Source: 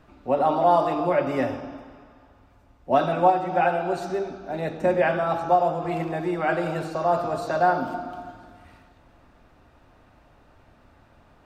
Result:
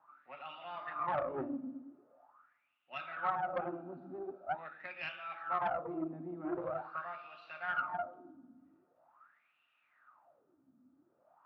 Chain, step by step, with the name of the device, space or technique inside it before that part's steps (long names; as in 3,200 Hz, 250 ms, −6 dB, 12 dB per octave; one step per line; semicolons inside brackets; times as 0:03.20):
wah-wah guitar rig (LFO wah 0.44 Hz 250–2,800 Hz, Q 9.1; tube saturation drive 30 dB, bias 0.55; loudspeaker in its box 110–4,400 Hz, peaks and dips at 150 Hz +6 dB, 440 Hz −7 dB, 1,300 Hz +10 dB)
level +2.5 dB